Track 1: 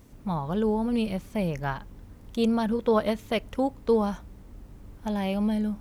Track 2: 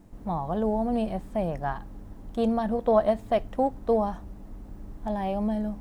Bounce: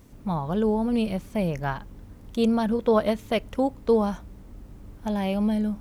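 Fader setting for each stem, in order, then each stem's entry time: +1.0 dB, -15.5 dB; 0.00 s, 0.00 s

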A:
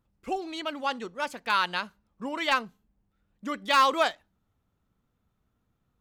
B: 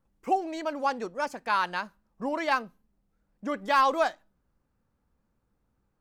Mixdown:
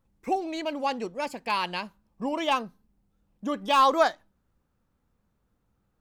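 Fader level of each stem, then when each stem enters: -4.0 dB, 0.0 dB; 0.00 s, 0.00 s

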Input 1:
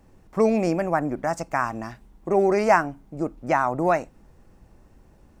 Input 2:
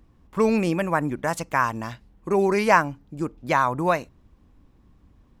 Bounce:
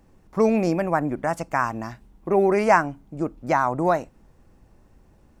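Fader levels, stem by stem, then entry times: -2.0 dB, -9.0 dB; 0.00 s, 0.00 s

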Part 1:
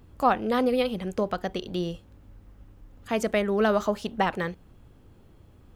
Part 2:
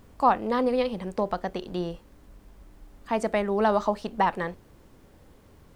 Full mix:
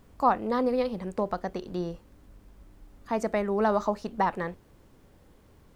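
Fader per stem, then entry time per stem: -14.0 dB, -3.5 dB; 0.00 s, 0.00 s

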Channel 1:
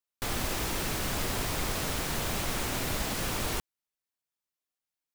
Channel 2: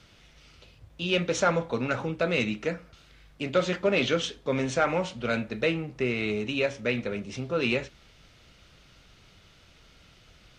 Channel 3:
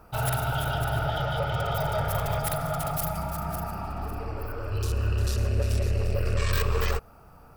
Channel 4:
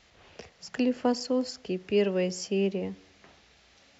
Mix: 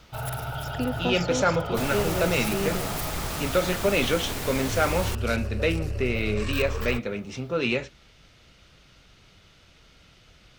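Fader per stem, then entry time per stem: -0.5 dB, +1.0 dB, -5.0 dB, -3.0 dB; 1.55 s, 0.00 s, 0.00 s, 0.00 s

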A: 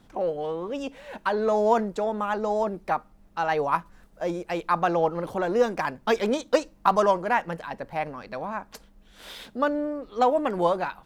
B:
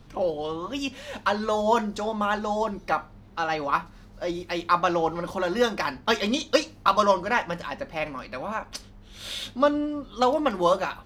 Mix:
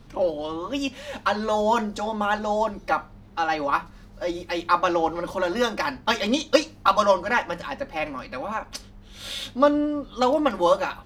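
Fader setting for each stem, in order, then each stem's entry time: -5.0 dB, +1.0 dB; 0.00 s, 0.00 s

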